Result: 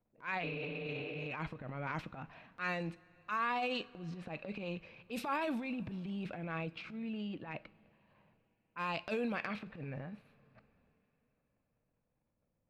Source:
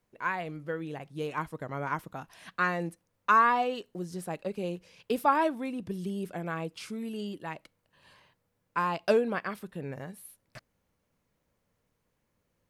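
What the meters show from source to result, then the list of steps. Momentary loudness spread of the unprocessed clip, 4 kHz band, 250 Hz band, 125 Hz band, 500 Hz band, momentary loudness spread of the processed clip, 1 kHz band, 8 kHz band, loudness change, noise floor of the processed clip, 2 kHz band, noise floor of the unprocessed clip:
16 LU, -2.0 dB, -5.5 dB, -4.0 dB, -10.0 dB, 11 LU, -11.5 dB, -12.5 dB, -8.5 dB, -82 dBFS, -7.0 dB, -78 dBFS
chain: spectral replace 0.46–1.24 s, 270–4800 Hz after; level-controlled noise filter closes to 830 Hz, open at -23.5 dBFS; graphic EQ with 31 bands 400 Hz -9 dB, 1 kHz -3 dB, 2.5 kHz +11 dB, 4 kHz +7 dB, 10 kHz -6 dB; compression 6:1, threshold -27 dBFS, peak gain reduction 8.5 dB; transient shaper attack -11 dB, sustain +9 dB; two-slope reverb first 0.34 s, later 4.1 s, from -17 dB, DRR 16 dB; trim -4 dB

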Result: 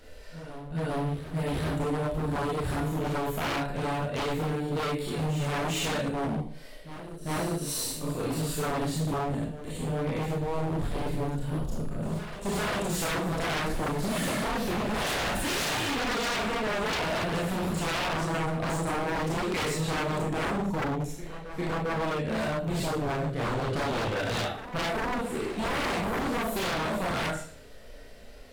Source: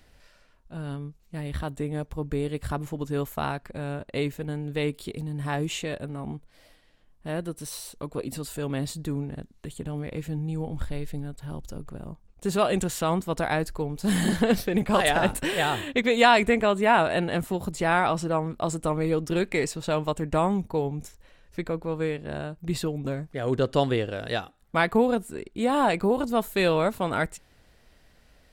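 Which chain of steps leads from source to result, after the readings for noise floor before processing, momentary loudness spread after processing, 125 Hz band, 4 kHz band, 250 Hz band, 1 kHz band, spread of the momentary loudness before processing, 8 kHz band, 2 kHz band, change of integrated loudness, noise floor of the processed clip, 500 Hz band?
-59 dBFS, 5 LU, -0.5 dB, 0.0 dB, -3.0 dB, -3.5 dB, 14 LU, +1.5 dB, -2.5 dB, -3.0 dB, -44 dBFS, -4.5 dB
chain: harmonic-percussive split percussive -11 dB; compression 12:1, threshold -29 dBFS, peak gain reduction 16 dB; band noise 390–640 Hz -67 dBFS; Schroeder reverb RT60 0.49 s, combs from 25 ms, DRR -5.5 dB; wavefolder -29 dBFS; on a send: reverse echo 400 ms -12 dB; on the sum: trim +4.5 dB

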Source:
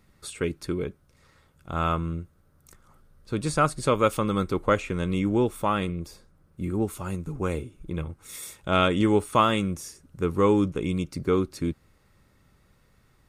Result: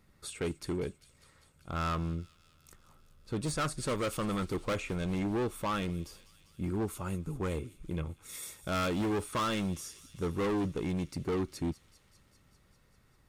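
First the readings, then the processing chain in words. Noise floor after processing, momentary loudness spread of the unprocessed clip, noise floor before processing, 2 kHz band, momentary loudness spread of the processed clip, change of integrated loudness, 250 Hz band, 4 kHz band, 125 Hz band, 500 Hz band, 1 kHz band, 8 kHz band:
-66 dBFS, 15 LU, -63 dBFS, -7.5 dB, 9 LU, -8.5 dB, -7.5 dB, -6.5 dB, -6.5 dB, -9.5 dB, -10.0 dB, -3.5 dB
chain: hard clipper -24.5 dBFS, distortion -6 dB; feedback echo behind a high-pass 198 ms, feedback 74%, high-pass 3.5 kHz, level -14.5 dB; trim -4 dB

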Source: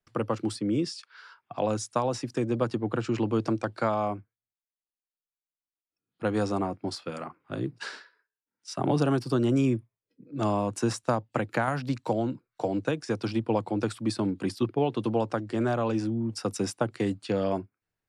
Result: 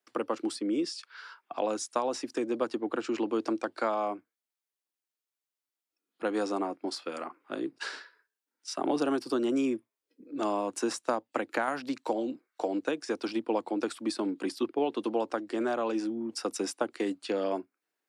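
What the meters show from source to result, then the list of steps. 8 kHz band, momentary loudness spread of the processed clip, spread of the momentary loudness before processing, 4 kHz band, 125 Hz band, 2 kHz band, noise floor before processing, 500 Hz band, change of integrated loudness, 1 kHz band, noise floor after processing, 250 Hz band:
-0.5 dB, 8 LU, 9 LU, -0.5 dB, -22.0 dB, -1.0 dB, under -85 dBFS, -2.0 dB, -3.0 dB, -2.0 dB, under -85 dBFS, -3.5 dB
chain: Chebyshev high-pass 280 Hz, order 3; spectral replace 12.19–12.50 s, 620–2300 Hz both; in parallel at +0.5 dB: compression, threshold -40 dBFS, peak gain reduction 17 dB; on the sum: trim -3 dB

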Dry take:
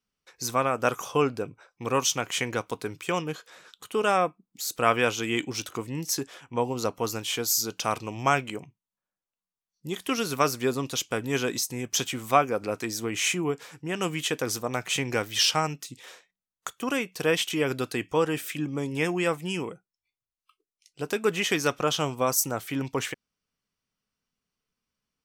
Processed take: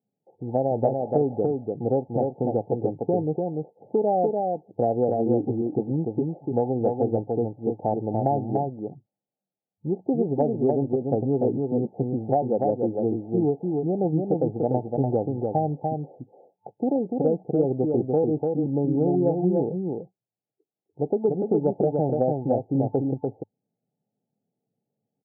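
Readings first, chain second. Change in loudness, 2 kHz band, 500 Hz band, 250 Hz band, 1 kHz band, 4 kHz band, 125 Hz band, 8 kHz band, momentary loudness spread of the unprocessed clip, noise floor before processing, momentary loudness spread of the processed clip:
+2.0 dB, under -35 dB, +5.5 dB, +7.0 dB, -0.5 dB, under -40 dB, +7.0 dB, under -40 dB, 10 LU, under -85 dBFS, 6 LU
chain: FFT band-pass 100–880 Hz; compression 6:1, threshold -26 dBFS, peak gain reduction 9 dB; delay 293 ms -3.5 dB; trim +7.5 dB

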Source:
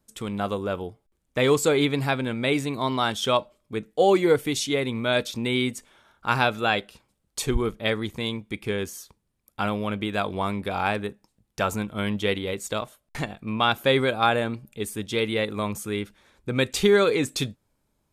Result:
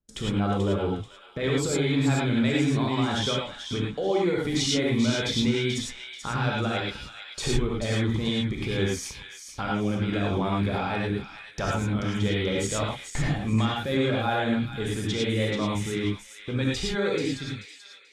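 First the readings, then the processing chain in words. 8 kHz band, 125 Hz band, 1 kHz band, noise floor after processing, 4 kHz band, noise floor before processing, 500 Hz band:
0.0 dB, +4.5 dB, -5.0 dB, -48 dBFS, -1.0 dB, -74 dBFS, -4.5 dB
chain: fade out at the end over 4.67 s; low-pass 5.7 kHz 12 dB/octave; gate with hold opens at -45 dBFS; bass shelf 65 Hz +11 dB; band-stop 2.7 kHz, Q 16; compression 6:1, threshold -27 dBFS, peak gain reduction 17 dB; peak limiter -27 dBFS, peak gain reduction 12 dB; rotary cabinet horn 6 Hz; feedback echo behind a high-pass 435 ms, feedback 31%, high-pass 1.7 kHz, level -7 dB; gated-style reverb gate 130 ms rising, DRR -3 dB; trim +8 dB

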